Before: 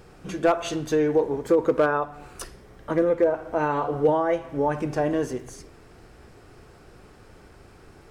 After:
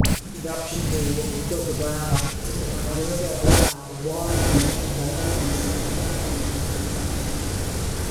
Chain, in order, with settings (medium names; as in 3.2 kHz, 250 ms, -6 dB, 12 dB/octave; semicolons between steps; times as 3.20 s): one-bit delta coder 64 kbps, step -24.5 dBFS; tone controls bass +14 dB, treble +11 dB; whistle 9.4 kHz -40 dBFS; wow and flutter 91 cents; inverted gate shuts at -15 dBFS, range -36 dB; phase dispersion highs, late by 56 ms, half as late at 1.2 kHz; on a send: echo that smears into a reverb 1018 ms, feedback 51%, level -11.5 dB; on the sum: gated-style reverb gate 150 ms flat, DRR 1 dB; loudness maximiser +18.5 dB; three bands compressed up and down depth 70%; trim +4 dB